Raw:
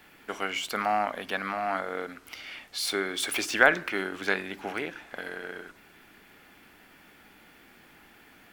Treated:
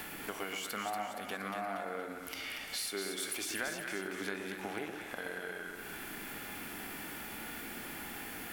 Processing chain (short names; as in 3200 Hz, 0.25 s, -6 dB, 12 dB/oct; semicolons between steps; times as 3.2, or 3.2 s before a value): bell 11000 Hz +11 dB 1.7 oct; harmonic-percussive split harmonic +8 dB; bell 5300 Hz -4 dB 2.8 oct; compressor 4:1, threshold -50 dBFS, peak gain reduction 30.5 dB; split-band echo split 1100 Hz, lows 0.123 s, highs 0.235 s, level -5.5 dB; gain +8 dB